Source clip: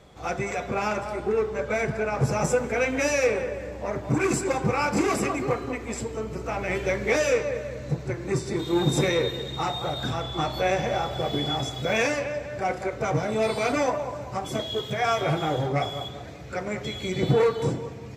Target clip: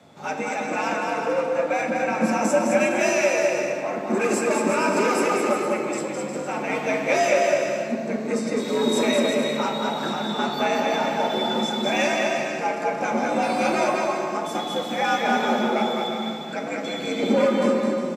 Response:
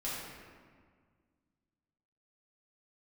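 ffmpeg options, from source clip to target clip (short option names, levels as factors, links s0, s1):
-filter_complex "[0:a]aecho=1:1:210|357|459.9|531.9|582.4:0.631|0.398|0.251|0.158|0.1,asplit=2[s0][s1];[1:a]atrim=start_sample=2205[s2];[s1][s2]afir=irnorm=-1:irlink=0,volume=0.501[s3];[s0][s3]amix=inputs=2:normalize=0,afreqshift=85,volume=0.794"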